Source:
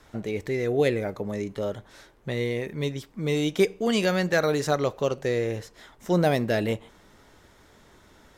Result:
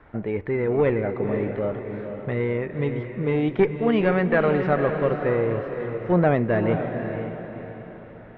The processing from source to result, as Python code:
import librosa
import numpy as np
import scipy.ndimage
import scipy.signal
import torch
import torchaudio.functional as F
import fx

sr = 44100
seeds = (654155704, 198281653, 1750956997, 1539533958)

y = fx.diode_clip(x, sr, knee_db=-17.0)
y = scipy.signal.sosfilt(scipy.signal.butter(4, 2200.0, 'lowpass', fs=sr, output='sos'), y)
y = fx.echo_diffused(y, sr, ms=511, feedback_pct=43, wet_db=-7.0)
y = y * librosa.db_to_amplitude(4.0)